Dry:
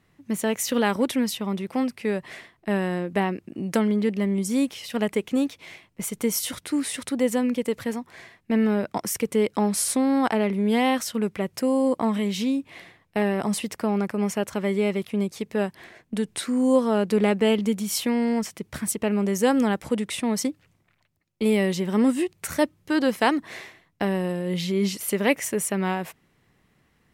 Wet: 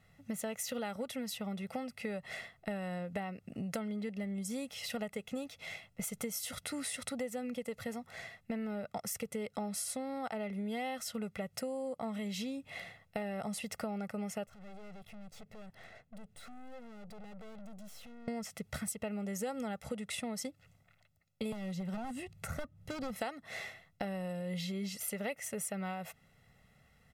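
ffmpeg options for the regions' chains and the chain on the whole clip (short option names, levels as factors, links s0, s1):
-filter_complex "[0:a]asettb=1/sr,asplit=3[s0][s1][s2];[s0]atrim=end=14.464[s3];[s1]atrim=start=14.46:end=18.28,asetpts=PTS-STARTPTS,afade=t=in:d=0.004:c=qsin,afade=t=out:st=3.816:d=0.004:c=qsin,acompressor=threshold=0.0158:ratio=3:attack=3.2:release=140:knee=1:detection=peak,aeval=exprs='(tanh(200*val(0)+0.65)-tanh(0.65))/200':c=same,highshelf=f=3200:g=-7.5[s4];[s2]atrim=start=18.276[s5];[s3][s4]acrossfade=d=0.004:c1=hsin:c2=qsin[s6];[s6][s5]acrossfade=d=0.004:c1=qsin:c2=hsin,asettb=1/sr,asplit=3[s7][s8][s9];[s7]atrim=end=21.524[s10];[s8]atrim=start=21.52:end=23.16,asetpts=PTS-STARTPTS,afade=t=in:d=0.004:c=qsin,afade=t=out:st=1.636:d=0.004:c=qsin,bass=f=250:g=7,treble=f=4000:g=-2,aeval=exprs='0.158*(abs(mod(val(0)/0.158+3,4)-2)-1)':c=same,acrossover=split=200|1400[s11][s12][s13];[s11]acompressor=threshold=0.02:ratio=4[s14];[s12]acompressor=threshold=0.0282:ratio=4[s15];[s13]acompressor=threshold=0.00562:ratio=4[s16];[s14][s15][s16]amix=inputs=3:normalize=0[s17];[s9]atrim=start=23.156[s18];[s10][s17]acrossfade=d=0.004:c1=hsin:c2=qsin[s19];[s19][s18]acrossfade=d=0.004:c1=qsin:c2=hsin,bandreject=f=1200:w=25,aecho=1:1:1.5:0.77,acompressor=threshold=0.0224:ratio=6,volume=0.668"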